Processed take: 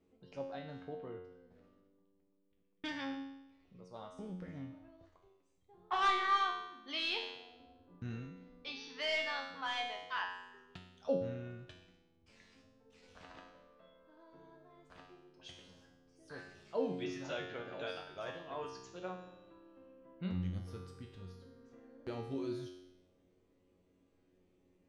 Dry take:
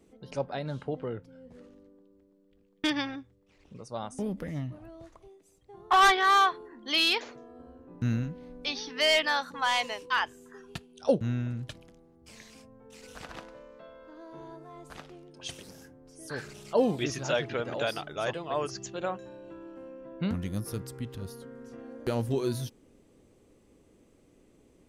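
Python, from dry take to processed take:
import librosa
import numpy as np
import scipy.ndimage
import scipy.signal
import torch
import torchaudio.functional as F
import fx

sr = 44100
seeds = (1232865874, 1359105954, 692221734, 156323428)

y = scipy.signal.sosfilt(scipy.signal.butter(2, 4600.0, 'lowpass', fs=sr, output='sos'), x)
y = fx.comb_fb(y, sr, f0_hz=91.0, decay_s=0.88, harmonics='all', damping=0.0, mix_pct=90)
y = F.gain(torch.from_numpy(y), 2.0).numpy()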